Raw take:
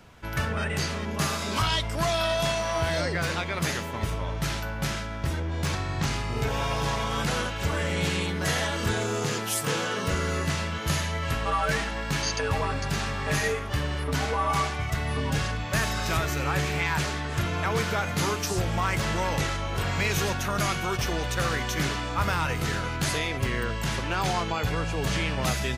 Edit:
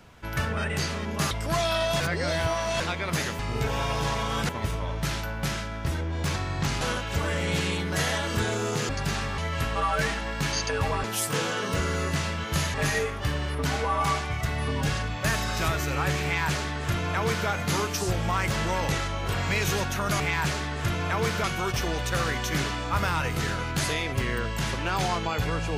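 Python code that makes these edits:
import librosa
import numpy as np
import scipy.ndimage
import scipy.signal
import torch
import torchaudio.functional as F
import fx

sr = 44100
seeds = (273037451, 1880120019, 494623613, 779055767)

y = fx.edit(x, sr, fx.cut(start_s=1.31, length_s=0.49),
    fx.reverse_span(start_s=2.49, length_s=0.8),
    fx.move(start_s=6.2, length_s=1.1, to_s=3.88),
    fx.swap(start_s=9.38, length_s=1.7, other_s=12.74, other_length_s=0.49),
    fx.duplicate(start_s=16.73, length_s=1.24, to_s=20.69), tone=tone)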